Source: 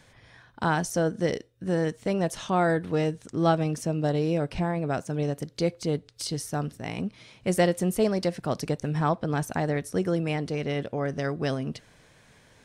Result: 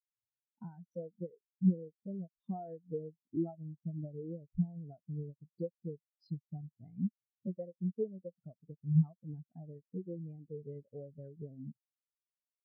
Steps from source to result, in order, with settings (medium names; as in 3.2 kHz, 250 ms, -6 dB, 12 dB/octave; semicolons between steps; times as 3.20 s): level-controlled noise filter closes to 2.6 kHz; compression 20:1, threshold -35 dBFS, peak gain reduction 19.5 dB; spectral contrast expander 4:1; trim +5 dB